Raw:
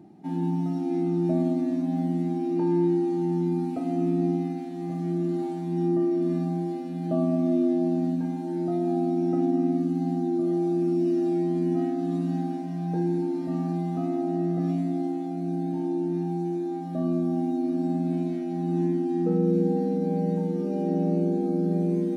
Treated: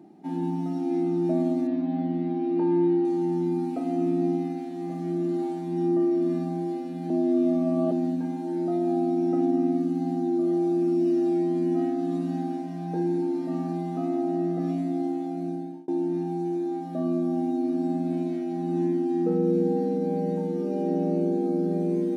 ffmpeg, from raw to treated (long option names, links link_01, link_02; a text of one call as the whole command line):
ffmpeg -i in.wav -filter_complex "[0:a]asettb=1/sr,asplit=3[link_01][link_02][link_03];[link_01]atrim=end=1.674[link_04];[link_02]atrim=start=1.67:end=3.05,asetpts=PTS-STARTPTS,afade=type=in:duration=0.004:curve=qsin,afade=type=out:start_time=1.376:duration=0.004:curve=qsin,lowpass=frequency=4000:width=0.5412,lowpass=frequency=4000:width=1.3066[link_05];[link_03]atrim=start=3.046[link_06];[link_04][link_05]acrossfade=duration=0.004:curve1=hsin:curve2=qsin[link_07];[link_07][link_06]acrossfade=duration=0.004:curve1=qsin:curve2=hsin,asplit=4[link_08][link_09][link_10][link_11];[link_08]atrim=end=7.102[link_12];[link_09]atrim=start=7.098:end=7.922,asetpts=PTS-STARTPTS,areverse[link_13];[link_10]atrim=start=7.918:end=15.88,asetpts=PTS-STARTPTS,afade=type=out:start_time=7.522:duration=0.44[link_14];[link_11]atrim=start=15.88,asetpts=PTS-STARTPTS,afade=type=in:duration=0.004:curve=hsin[link_15];[link_12][link_13]acrossfade=duration=0.004:curve1=hsin:curve2=hsin[link_16];[link_14][link_15]concat=n=2:v=0:a=1[link_17];[link_16][link_17]acrossfade=duration=0.004:curve1=hsin:curve2=hsin,highpass=260,lowshelf=frequency=440:gain=4" out.wav